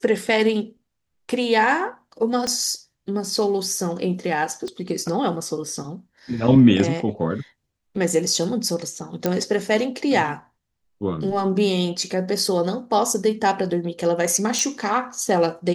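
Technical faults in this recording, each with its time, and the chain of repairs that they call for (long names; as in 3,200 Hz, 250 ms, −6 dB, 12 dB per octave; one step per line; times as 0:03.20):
0:02.47: click −13 dBFS
0:04.68: click −22 dBFS
0:09.26: click −7 dBFS
0:14.59: click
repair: click removal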